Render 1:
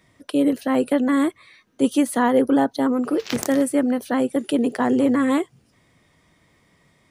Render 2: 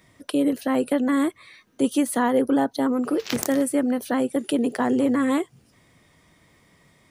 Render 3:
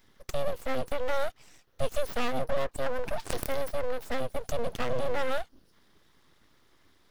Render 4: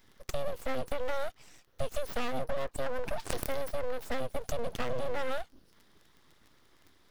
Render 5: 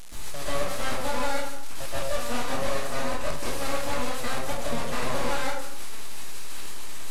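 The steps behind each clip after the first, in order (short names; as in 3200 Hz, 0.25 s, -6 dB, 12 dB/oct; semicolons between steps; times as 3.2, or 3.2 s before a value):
high shelf 10000 Hz +5.5 dB; in parallel at +2 dB: compressor, threshold -26 dBFS, peak gain reduction 13 dB; on the sum: gain -5.5 dB
fixed phaser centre 2300 Hz, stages 6; full-wave rectifier; gain -1 dB
compressor, threshold -26 dBFS, peak gain reduction 6.5 dB; crackle 24/s -46 dBFS
delta modulation 64 kbps, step -25.5 dBFS; plate-style reverb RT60 0.8 s, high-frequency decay 0.65×, pre-delay 0.115 s, DRR -10 dB; gain -5 dB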